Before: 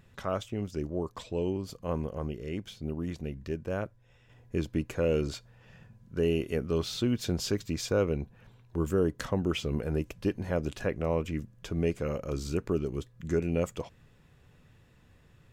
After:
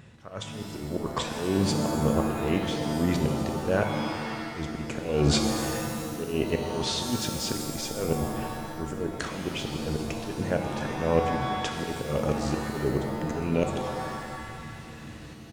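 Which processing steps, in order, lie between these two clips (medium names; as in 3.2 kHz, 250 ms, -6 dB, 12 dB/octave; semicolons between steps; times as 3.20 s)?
high-pass 56 Hz 12 dB/octave; reverse; compression 12:1, threshold -36 dBFS, peak gain reduction 15 dB; reverse; Chebyshev shaper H 2 -11 dB, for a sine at -22.5 dBFS; level rider gain up to 7 dB; in parallel at -5 dB: integer overflow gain 14.5 dB; on the sum: slow attack 246 ms; resampled via 22.05 kHz; pitch-shifted reverb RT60 1.8 s, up +7 st, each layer -2 dB, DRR 4.5 dB; trim +5 dB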